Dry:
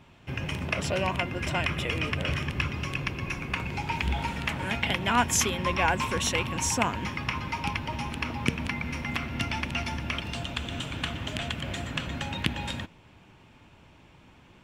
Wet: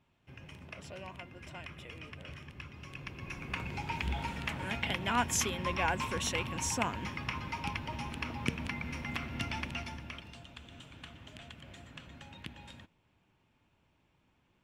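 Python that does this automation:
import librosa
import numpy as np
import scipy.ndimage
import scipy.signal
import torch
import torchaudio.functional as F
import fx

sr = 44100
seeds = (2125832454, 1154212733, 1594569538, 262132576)

y = fx.gain(x, sr, db=fx.line((2.66, -18.0), (3.57, -6.5), (9.62, -6.5), (10.43, -17.5)))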